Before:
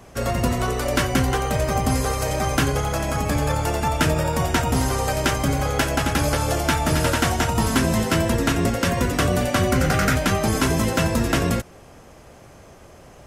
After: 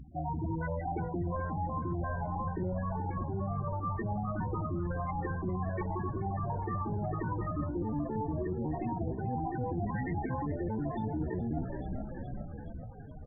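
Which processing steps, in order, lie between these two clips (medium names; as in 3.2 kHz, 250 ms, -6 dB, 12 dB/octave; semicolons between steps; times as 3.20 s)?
hum 50 Hz, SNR 22 dB; loudest bins only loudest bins 8; Gaussian low-pass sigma 2.3 samples; hum notches 50/100/150/200/250/300/350/400/450 Hz; on a send: frequency-shifting echo 422 ms, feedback 65%, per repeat -38 Hz, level -14 dB; on the sum: pitch shift +5 st; reverse; compression 5:1, threshold -32 dBFS, peak gain reduction 13 dB; reverse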